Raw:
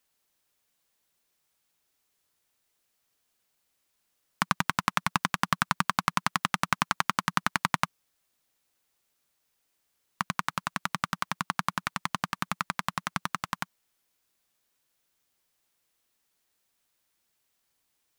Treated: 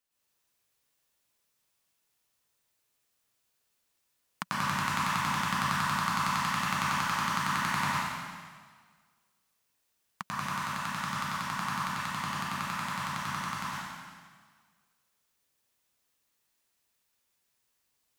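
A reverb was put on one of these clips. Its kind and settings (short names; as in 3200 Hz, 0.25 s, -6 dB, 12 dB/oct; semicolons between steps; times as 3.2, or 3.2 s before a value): plate-style reverb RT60 1.6 s, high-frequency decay 1×, pre-delay 95 ms, DRR -8 dB; gain -9.5 dB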